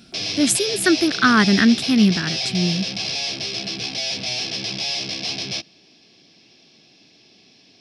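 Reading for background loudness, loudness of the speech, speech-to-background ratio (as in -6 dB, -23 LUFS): -24.0 LUFS, -18.5 LUFS, 5.5 dB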